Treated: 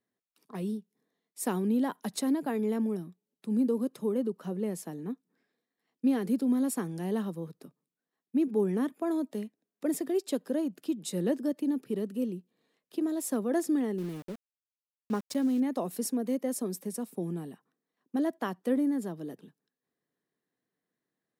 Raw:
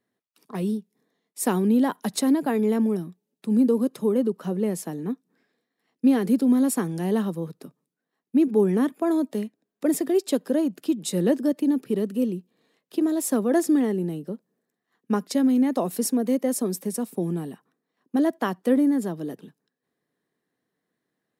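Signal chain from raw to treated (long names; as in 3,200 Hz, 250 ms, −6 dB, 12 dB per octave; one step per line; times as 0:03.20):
0:13.98–0:15.60: centre clipping without the shift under −36 dBFS
level −7.5 dB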